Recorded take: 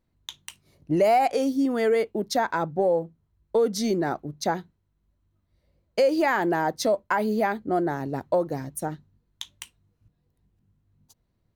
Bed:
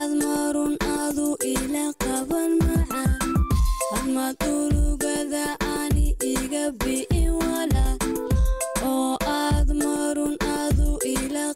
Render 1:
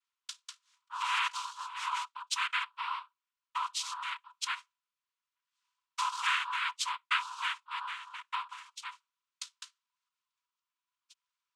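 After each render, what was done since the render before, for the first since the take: noise vocoder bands 4; rippled Chebyshev high-pass 960 Hz, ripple 6 dB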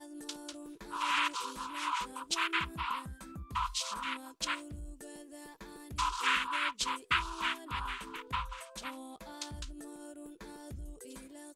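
add bed -24 dB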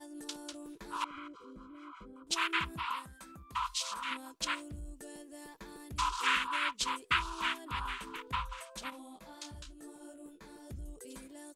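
1.04–2.27 running mean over 49 samples; 2.79–4.11 low shelf 350 Hz -10 dB; 8.9–10.7 detuned doubles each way 30 cents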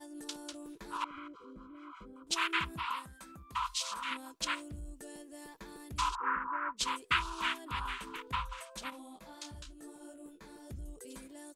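0.97–1.9 high shelf 4300 Hz -8 dB; 6.15–6.77 steep low-pass 1600 Hz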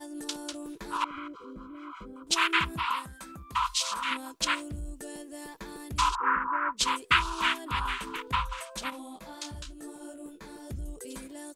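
gain +7 dB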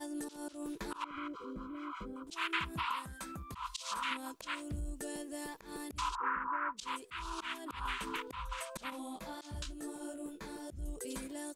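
compressor 2.5:1, threshold -36 dBFS, peak gain reduction 12.5 dB; auto swell 0.143 s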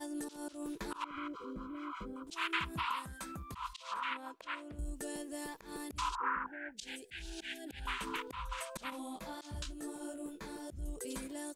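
3.73–4.79 tone controls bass -13 dB, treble -15 dB; 6.46–7.87 elliptic band-stop 800–1600 Hz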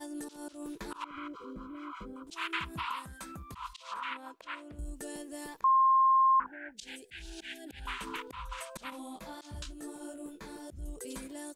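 5.64–6.4 bleep 1060 Hz -20.5 dBFS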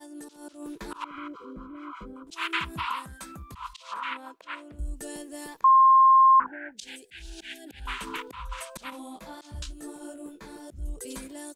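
AGC gain up to 4 dB; three-band expander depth 40%

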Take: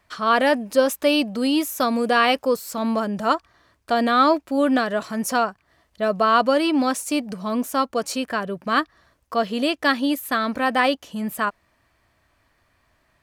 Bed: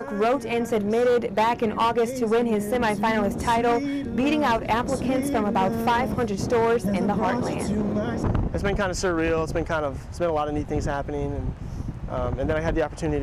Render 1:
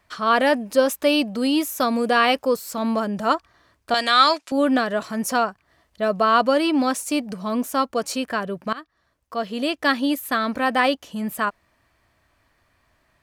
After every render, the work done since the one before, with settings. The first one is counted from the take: 3.94–4.52 weighting filter ITU-R 468; 8.73–9.93 fade in, from -20.5 dB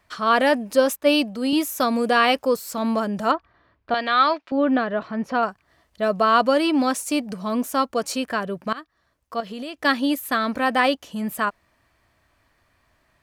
0.96–1.53 three-band expander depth 70%; 3.31–5.43 air absorption 310 m; 9.4–9.85 compressor, threshold -29 dBFS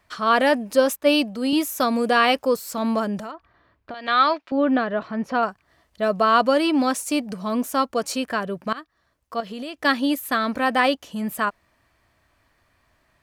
3.18–4.08 compressor 10:1, threshold -30 dBFS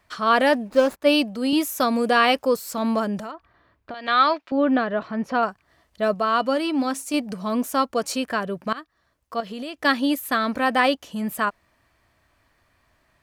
0.53–1.01 median filter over 15 samples; 6.14–7.14 resonator 270 Hz, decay 0.19 s, harmonics odd, mix 40%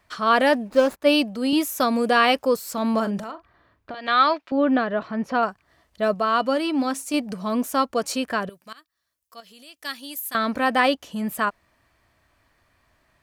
2.9–4.01 doubler 40 ms -12 dB; 8.49–10.35 pre-emphasis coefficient 0.9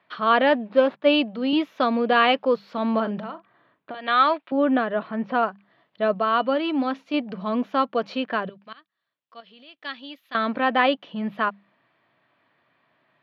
elliptic band-pass 140–3500 Hz, stop band 40 dB; notches 50/100/150/200 Hz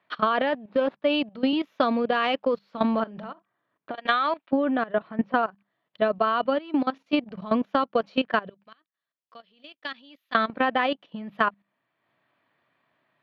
level quantiser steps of 12 dB; transient shaper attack +6 dB, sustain -6 dB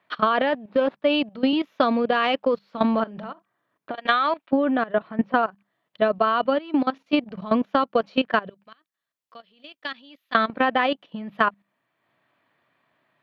gain +2.5 dB

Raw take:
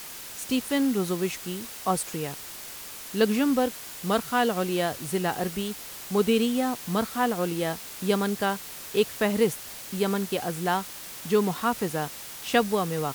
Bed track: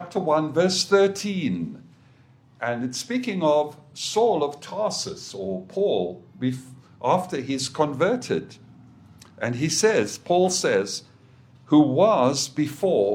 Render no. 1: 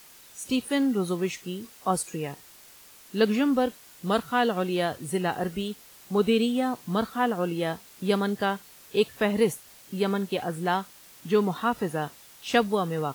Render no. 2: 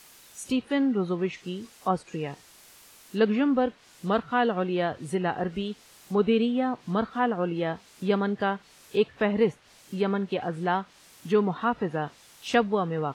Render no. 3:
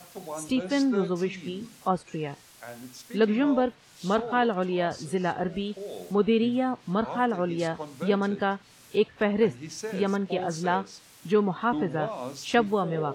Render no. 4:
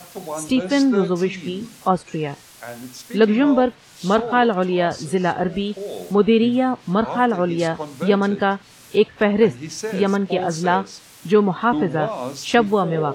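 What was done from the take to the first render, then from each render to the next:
noise print and reduce 11 dB
treble ducked by the level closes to 2700 Hz, closed at -24 dBFS
add bed track -16 dB
gain +7.5 dB; limiter -2 dBFS, peak gain reduction 1.5 dB

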